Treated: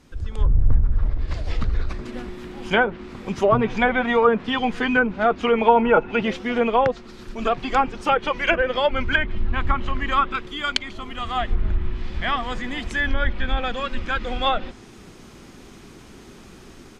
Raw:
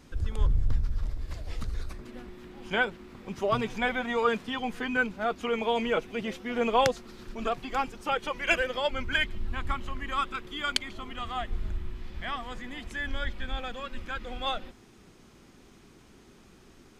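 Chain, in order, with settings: AGC gain up to 11 dB; 5.68–6.23 small resonant body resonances 890/1400/2600 Hz, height 13 dB, ringing for 45 ms; treble ducked by the level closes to 1200 Hz, closed at -12 dBFS

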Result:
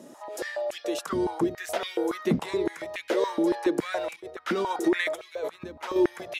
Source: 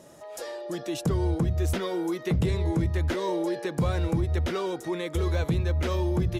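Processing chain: 4.16–5.96 negative-ratio compressor -32 dBFS, ratio -1; stepped high-pass 7.1 Hz 240–2500 Hz

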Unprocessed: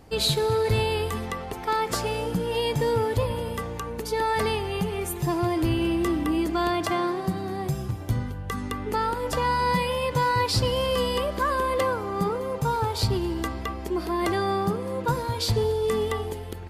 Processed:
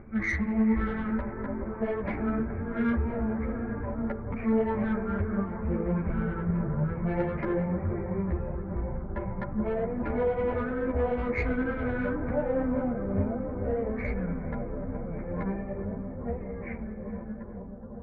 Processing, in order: ending faded out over 5.20 s; speed mistake 15 ips tape played at 7.5 ips; Chebyshev low-pass 2200 Hz, order 6; in parallel at -3 dB: compressor, threshold -33 dBFS, peak gain reduction 13 dB; on the sum: granular stretch 0.54×, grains 0.2 s; soft clip -18 dBFS, distortion -19 dB; analogue delay 0.422 s, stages 4096, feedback 83%, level -10 dB; upward compressor, threshold -40 dBFS; ensemble effect

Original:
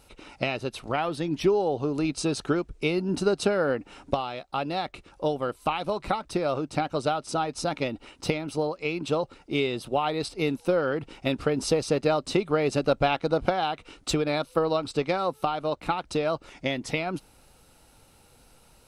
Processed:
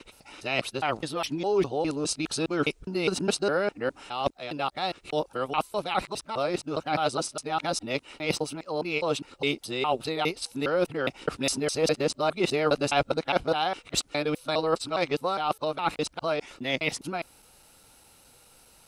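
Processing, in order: local time reversal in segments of 0.205 s; tilt +1.5 dB/oct

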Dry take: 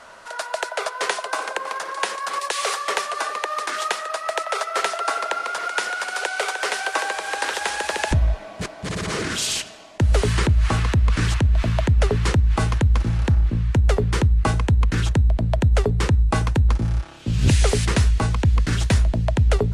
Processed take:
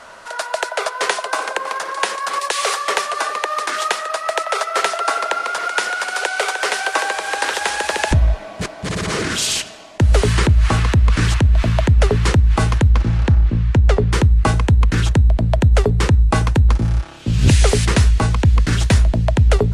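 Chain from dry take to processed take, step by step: 12.91–14.12 air absorption 57 m; gain +4.5 dB

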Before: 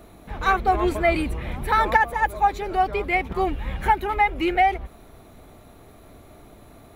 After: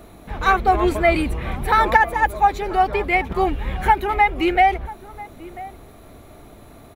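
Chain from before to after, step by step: outdoor echo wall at 170 m, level -18 dB; gain +3.5 dB

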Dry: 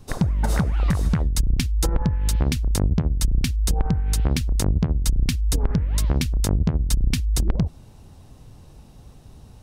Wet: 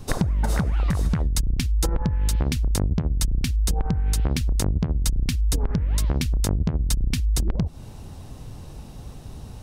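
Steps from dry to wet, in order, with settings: compressor 6:1, threshold -26 dBFS, peak gain reduction 11.5 dB; gain +7 dB

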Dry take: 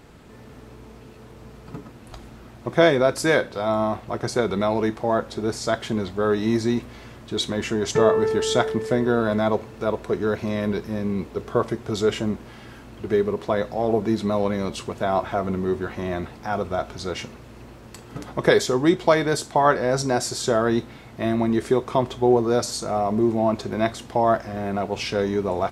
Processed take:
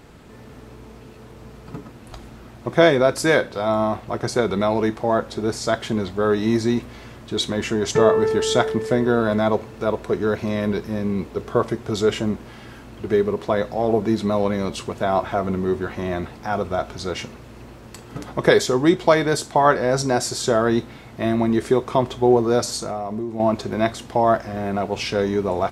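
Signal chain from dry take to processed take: 22.76–23.4 compressor 12:1, threshold -26 dBFS, peak gain reduction 11.5 dB; gain +2 dB

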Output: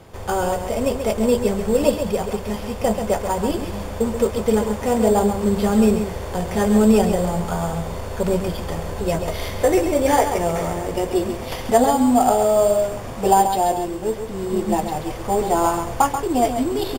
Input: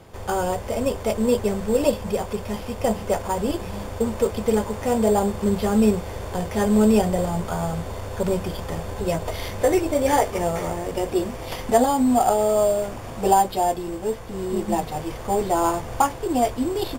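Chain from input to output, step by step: on a send: echo 0.135 s -8 dB; on the sum: gain +2 dB

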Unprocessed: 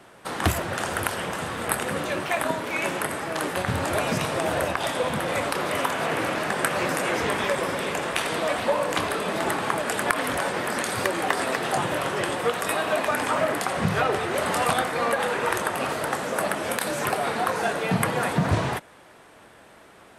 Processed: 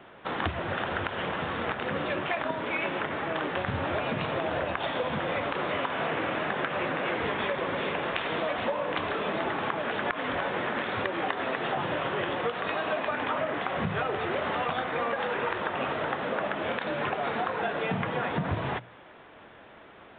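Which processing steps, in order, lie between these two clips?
notches 60/120/180 Hz; compressor, threshold -26 dBFS, peak gain reduction 10.5 dB; downsampling 8000 Hz

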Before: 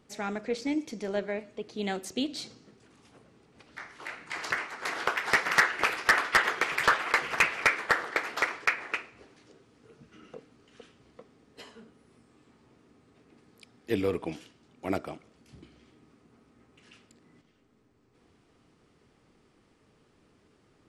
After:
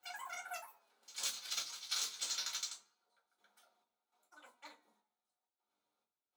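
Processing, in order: Doppler pass-by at 4.49, 21 m/s, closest 2.3 m; HPF 64 Hz 12 dB/oct; bell 1200 Hz +7 dB 0.72 oct; notches 50/100/150/200/250 Hz; negative-ratio compressor -48 dBFS, ratio -0.5; wide varispeed 3.28×; step gate "xxxx....xxx..x." 102 bpm -12 dB; flange 0.28 Hz, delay 9.3 ms, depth 5.7 ms, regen +90%; reverb RT60 0.25 s, pre-delay 3 ms, DRR -4 dB; gain +8 dB

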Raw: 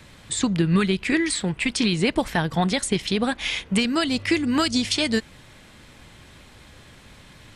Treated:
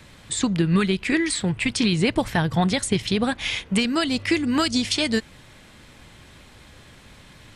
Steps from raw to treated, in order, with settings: 1.38–3.58 bell 110 Hz +14 dB 0.51 oct

